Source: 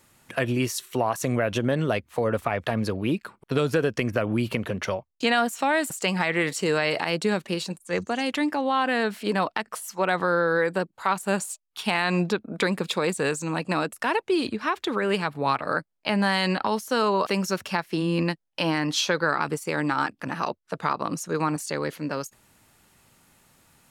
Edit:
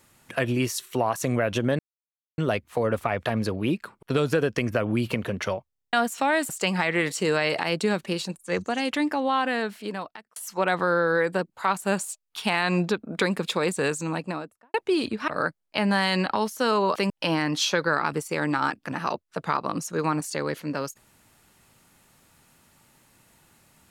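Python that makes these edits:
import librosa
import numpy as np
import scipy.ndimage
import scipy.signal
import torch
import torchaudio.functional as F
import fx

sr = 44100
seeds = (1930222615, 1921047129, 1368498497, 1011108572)

y = fx.studio_fade_out(x, sr, start_s=13.4, length_s=0.75)
y = fx.edit(y, sr, fx.insert_silence(at_s=1.79, length_s=0.59),
    fx.stutter_over(start_s=5.1, slice_s=0.03, count=8),
    fx.fade_out_span(start_s=8.72, length_s=1.05),
    fx.cut(start_s=14.69, length_s=0.9),
    fx.cut(start_s=17.41, length_s=1.05), tone=tone)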